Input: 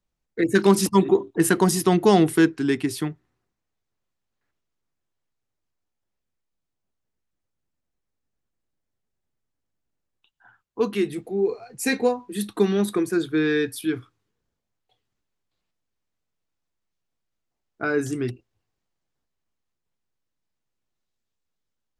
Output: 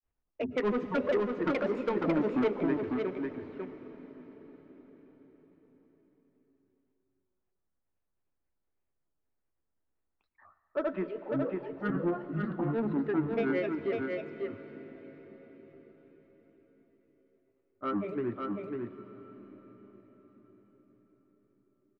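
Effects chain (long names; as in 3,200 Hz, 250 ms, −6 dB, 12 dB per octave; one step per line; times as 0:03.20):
low-pass filter 1,900 Hz 24 dB per octave
parametric band 140 Hz −9 dB 0.57 octaves
in parallel at −1 dB: downward compressor, threshold −30 dBFS, peak gain reduction 17.5 dB
on the sum: granular cloud 173 ms, grains 10 per second, spray 37 ms, pitch spread up and down by 7 semitones
soft clipping −16.5 dBFS, distortion −11 dB
single-tap delay 548 ms −4 dB
on a send at −12 dB: convolution reverb RT60 5.8 s, pre-delay 101 ms
on the sum: level −7 dB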